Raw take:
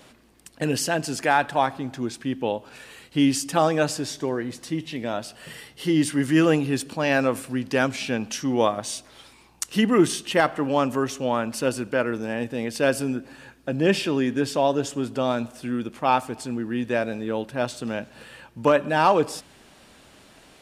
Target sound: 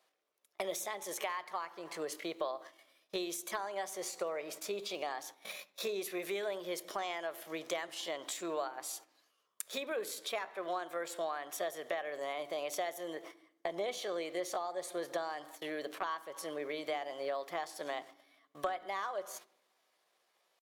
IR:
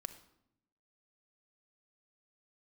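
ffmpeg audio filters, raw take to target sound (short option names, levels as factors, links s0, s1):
-filter_complex "[0:a]agate=range=0.0794:threshold=0.01:ratio=16:detection=peak,highpass=460,acompressor=threshold=0.0178:ratio=16,asetrate=55563,aresample=44100,atempo=0.793701,asplit=2[s0][s1];[s1]lowpass=f=1200:p=1[s2];[1:a]atrim=start_sample=2205[s3];[s2][s3]afir=irnorm=-1:irlink=0,volume=1.06[s4];[s0][s4]amix=inputs=2:normalize=0,volume=0.75"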